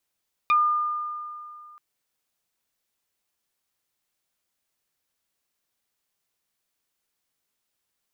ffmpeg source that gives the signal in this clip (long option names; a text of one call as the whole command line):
ffmpeg -f lavfi -i "aevalsrc='0.178*pow(10,-3*t/2.47)*sin(2*PI*1210*t+1.4*pow(10,-3*t/0.11)*sin(2*PI*1*1210*t))':duration=1.28:sample_rate=44100" out.wav